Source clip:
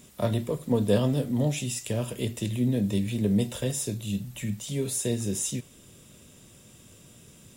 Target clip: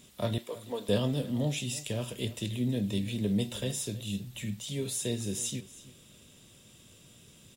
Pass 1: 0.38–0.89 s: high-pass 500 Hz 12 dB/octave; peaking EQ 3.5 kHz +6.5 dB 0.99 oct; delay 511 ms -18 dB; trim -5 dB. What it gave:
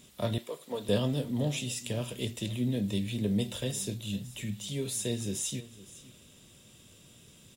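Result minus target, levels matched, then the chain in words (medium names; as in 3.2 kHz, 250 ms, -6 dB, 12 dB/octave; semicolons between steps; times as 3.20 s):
echo 188 ms late
0.38–0.89 s: high-pass 500 Hz 12 dB/octave; peaking EQ 3.5 kHz +6.5 dB 0.99 oct; delay 323 ms -18 dB; trim -5 dB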